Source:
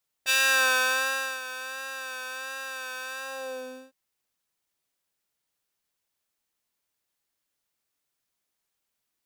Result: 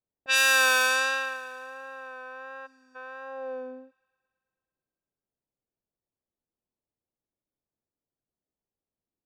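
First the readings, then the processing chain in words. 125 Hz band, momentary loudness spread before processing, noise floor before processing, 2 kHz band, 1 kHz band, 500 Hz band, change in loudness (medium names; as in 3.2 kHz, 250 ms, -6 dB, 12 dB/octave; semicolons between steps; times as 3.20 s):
no reading, 15 LU, -82 dBFS, +1.0 dB, +1.0 dB, +1.5 dB, +5.0 dB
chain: level-controlled noise filter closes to 500 Hz, open at -19 dBFS; time-frequency box 2.67–2.95 s, 290–4400 Hz -25 dB; on a send: feedback echo behind a high-pass 110 ms, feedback 72%, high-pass 2.1 kHz, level -19 dB; on the sum: trim +1.5 dB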